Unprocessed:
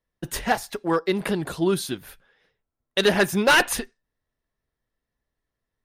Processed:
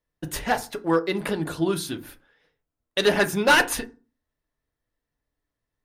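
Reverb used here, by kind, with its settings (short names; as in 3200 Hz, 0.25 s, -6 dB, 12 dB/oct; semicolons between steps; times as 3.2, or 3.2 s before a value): FDN reverb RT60 0.33 s, low-frequency decay 1.3×, high-frequency decay 0.45×, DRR 7 dB; gain -1.5 dB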